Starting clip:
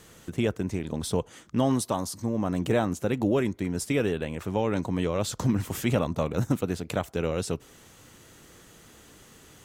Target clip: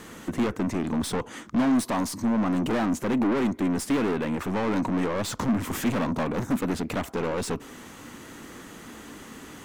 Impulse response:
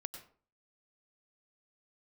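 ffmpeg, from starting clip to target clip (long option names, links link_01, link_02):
-af "aeval=exprs='(tanh(50.1*val(0)+0.2)-tanh(0.2))/50.1':channel_layout=same,equalizer=frequency=125:width_type=o:width=1:gain=-3,equalizer=frequency=250:width_type=o:width=1:gain=12,equalizer=frequency=1000:width_type=o:width=1:gain=7,equalizer=frequency=2000:width_type=o:width=1:gain=5,volume=4.5dB"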